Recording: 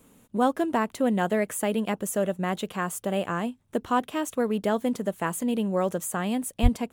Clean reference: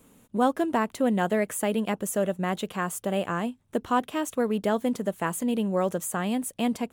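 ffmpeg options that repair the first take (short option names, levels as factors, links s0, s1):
-filter_complex "[0:a]asplit=3[s0][s1][s2];[s0]afade=t=out:st=6.62:d=0.02[s3];[s1]highpass=f=140:w=0.5412,highpass=f=140:w=1.3066,afade=t=in:st=6.62:d=0.02,afade=t=out:st=6.74:d=0.02[s4];[s2]afade=t=in:st=6.74:d=0.02[s5];[s3][s4][s5]amix=inputs=3:normalize=0"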